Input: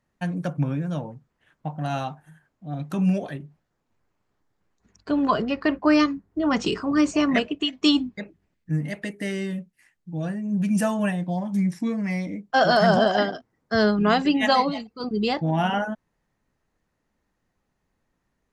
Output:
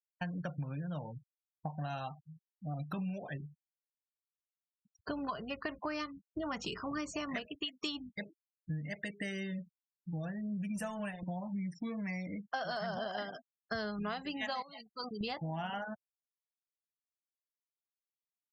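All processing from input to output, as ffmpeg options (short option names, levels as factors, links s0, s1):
-filter_complex "[0:a]asettb=1/sr,asplit=3[s0][s1][s2];[s0]atrim=end=10.764[s3];[s1]atrim=start=10.76:end=11.23,asetpts=PTS-STARTPTS,afade=t=in:d=0.004:c=qsin,afade=t=out:st=0.466:d=0.004:c=qsin,bandreject=f=60:t=h:w=6,bandreject=f=120:t=h:w=6,bandreject=f=180:t=h:w=6,bandreject=f=240:t=h:w=6,bandreject=f=300:t=h:w=6,bandreject=f=360:t=h:w=6,bandreject=f=420:t=h:w=6,aeval=exprs='sgn(val(0))*max(abs(val(0))-0.01,0)':c=same[s4];[s2]atrim=start=11.226[s5];[s3][s4]acrossfade=d=0.004:c1=hsin:c2=qsin[s6];[s6][s5]acrossfade=d=0.004:c1=qsin:c2=hsin,asettb=1/sr,asplit=3[s7][s8][s9];[s7]atrim=end=14.624[s10];[s8]atrim=start=14.62:end=15.21,asetpts=PTS-STARTPTS,afade=t=in:d=0.004:c=qsin,afade=t=out:st=0.586:d=0.004:c=qsin,lowshelf=f=410:g=-11,acompressor=threshold=0.0251:ratio=20:attack=3.2:release=140:knee=1:detection=peak[s11];[s9]atrim=start=15.206[s12];[s10][s11]acrossfade=d=0.004:c1=hsin:c2=qsin[s13];[s13][s12]acrossfade=d=0.004:c1=qsin:c2=hsin,afftfilt=real='re*gte(hypot(re,im),0.0112)':imag='im*gte(hypot(re,im),0.0112)':win_size=1024:overlap=0.75,equalizer=f=310:w=0.96:g=-8.5,acompressor=threshold=0.0141:ratio=8,volume=1.12"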